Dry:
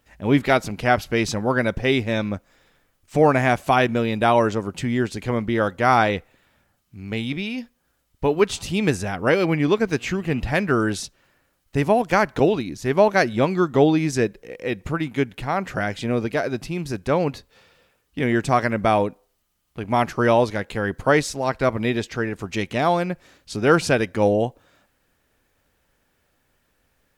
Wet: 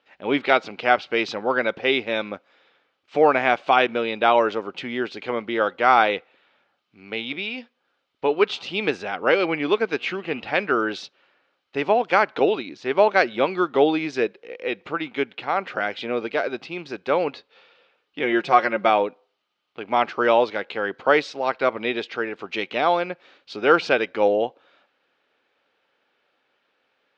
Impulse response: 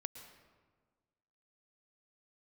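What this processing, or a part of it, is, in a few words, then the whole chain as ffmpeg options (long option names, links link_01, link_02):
phone earpiece: -filter_complex "[0:a]highpass=480,equalizer=frequency=650:width_type=q:width=4:gain=-4,equalizer=frequency=1000:width_type=q:width=4:gain=-4,equalizer=frequency=1800:width_type=q:width=4:gain=-6,lowpass=frequency=3900:width=0.5412,lowpass=frequency=3900:width=1.3066,asettb=1/sr,asplit=3[link_01][link_02][link_03];[link_01]atrim=end=18.234[link_04];[link_02]atrim=start=18.23:end=18.9,asetpts=PTS-STARTPTS,afade=type=in:duration=0.004:curve=qsin,afade=type=out:start_time=0.666:duration=0.004:curve=qsin,aecho=1:1:5.6:0.62,atrim=end_sample=29547[link_05];[link_03]atrim=start=18.896[link_06];[link_04][link_05]acrossfade=duration=0.004:curve1=hsin:curve2=qsin[link_07];[link_07][link_06]acrossfade=duration=0.004:curve1=qsin:curve2=hsin,volume=4dB"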